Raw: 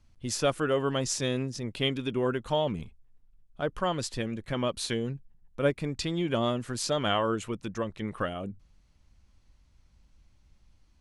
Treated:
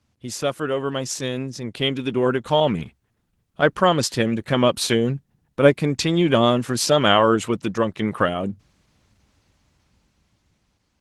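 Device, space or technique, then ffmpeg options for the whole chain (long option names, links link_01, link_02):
video call: -filter_complex "[0:a]asettb=1/sr,asplit=3[link_01][link_02][link_03];[link_01]atrim=end=2.604[link_04];[link_02]atrim=start=2.6:end=3.74,asetpts=PTS-STARTPTS,afade=type=in:duration=0.004:curve=qsin,afade=type=out:start_time=1.136:duration=0.004:curve=qsin,adynamicequalizer=threshold=0.00282:dfrequency=1700:dqfactor=1.4:tfrequency=1700:tqfactor=1.4:attack=5:release=100:ratio=0.375:range=4:mode=boostabove:tftype=bell[link_05];[link_03]atrim=start=3.736[link_06];[link_04][link_05]acrossfade=duration=0.004:curve1=hsin:curve2=qsin[link_07];[link_07][link_06]acrossfade=duration=0.004:curve1=qsin:curve2=hsin,highpass=110,dynaudnorm=framelen=680:gausssize=7:maxgain=10dB,volume=3dB" -ar 48000 -c:a libopus -b:a 16k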